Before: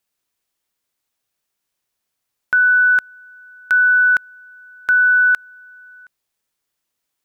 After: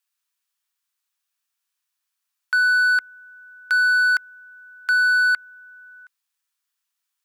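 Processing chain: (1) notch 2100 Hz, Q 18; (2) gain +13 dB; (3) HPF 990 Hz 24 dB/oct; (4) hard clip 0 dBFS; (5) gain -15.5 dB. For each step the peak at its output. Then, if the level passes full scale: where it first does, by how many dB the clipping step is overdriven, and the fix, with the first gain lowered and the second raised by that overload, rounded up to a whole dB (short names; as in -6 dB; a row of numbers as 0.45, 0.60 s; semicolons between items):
-9.5, +3.5, +6.0, 0.0, -15.5 dBFS; step 2, 6.0 dB; step 2 +7 dB, step 5 -9.5 dB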